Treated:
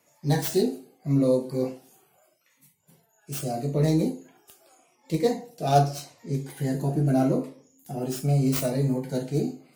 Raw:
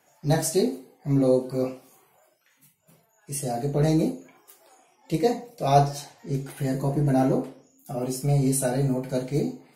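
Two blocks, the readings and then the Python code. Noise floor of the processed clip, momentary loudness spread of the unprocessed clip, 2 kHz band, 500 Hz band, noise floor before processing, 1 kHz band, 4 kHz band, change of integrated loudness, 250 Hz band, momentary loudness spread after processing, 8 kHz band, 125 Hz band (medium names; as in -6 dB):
-67 dBFS, 11 LU, -1.5 dB, -1.5 dB, -65 dBFS, -2.0 dB, 0.0 dB, -1.0 dB, -0.5 dB, 11 LU, -5.0 dB, 0.0 dB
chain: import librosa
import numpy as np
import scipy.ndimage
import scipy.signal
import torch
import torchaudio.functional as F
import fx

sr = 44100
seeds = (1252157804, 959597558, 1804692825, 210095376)

y = fx.tracing_dist(x, sr, depth_ms=0.16)
y = scipy.signal.sosfilt(scipy.signal.butter(2, 54.0, 'highpass', fs=sr, output='sos'), y)
y = fx.notch_cascade(y, sr, direction='falling', hz=0.81)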